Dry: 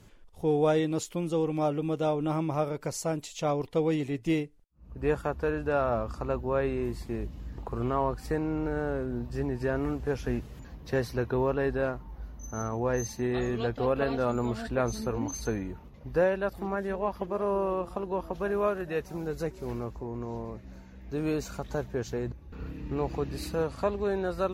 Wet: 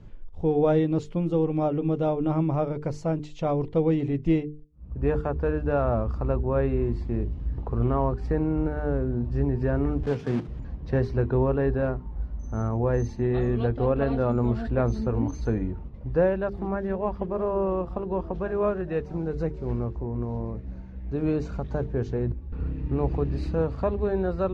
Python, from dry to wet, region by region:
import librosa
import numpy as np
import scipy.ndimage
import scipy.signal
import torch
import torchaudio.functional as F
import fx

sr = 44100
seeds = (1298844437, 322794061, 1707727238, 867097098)

y = fx.chain(x, sr, fx.block_float(bits=3),
    fx.highpass(hz=120.0, slope=24), at=(10.03, 10.48))
y = scipy.signal.sosfilt(scipy.signal.butter(2, 5100.0, 'lowpass', fs=sr, output='sos'), y)
y = fx.tilt_eq(y, sr, slope=-3.0)
y = fx.hum_notches(y, sr, base_hz=50, count=9)